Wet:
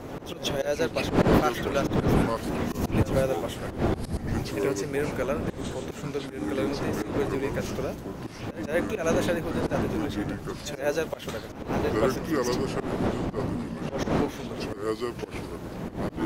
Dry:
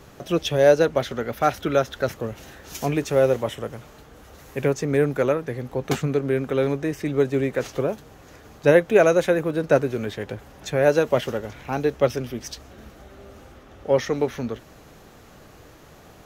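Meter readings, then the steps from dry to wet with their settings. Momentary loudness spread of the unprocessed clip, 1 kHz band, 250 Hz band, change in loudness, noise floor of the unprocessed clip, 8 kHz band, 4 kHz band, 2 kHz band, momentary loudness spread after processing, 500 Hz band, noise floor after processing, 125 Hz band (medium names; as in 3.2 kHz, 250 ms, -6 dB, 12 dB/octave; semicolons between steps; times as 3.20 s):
17 LU, -2.5 dB, -0.5 dB, -6.0 dB, -48 dBFS, -1.5 dB, -1.5 dB, -4.5 dB, 10 LU, -7.0 dB, -40 dBFS, -1.0 dB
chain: wind noise 350 Hz -19 dBFS; ever faster or slower copies 375 ms, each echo -5 st, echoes 3; slow attack 142 ms; tilt EQ +2 dB/octave; on a send: reverse echo 174 ms -16 dB; on the sum: trim -6.5 dB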